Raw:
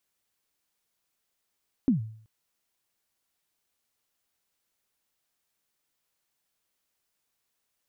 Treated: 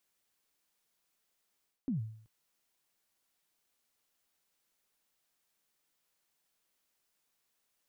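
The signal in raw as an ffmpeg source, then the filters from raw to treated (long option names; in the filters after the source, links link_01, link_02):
-f lavfi -i "aevalsrc='0.158*pow(10,-3*t/0.56)*sin(2*PI*(290*0.123/log(110/290)*(exp(log(110/290)*min(t,0.123)/0.123)-1)+110*max(t-0.123,0)))':duration=0.38:sample_rate=44100"
-af "equalizer=frequency=83:width_type=o:width=0.44:gain=-14,areverse,acompressor=threshold=-34dB:ratio=6,areverse"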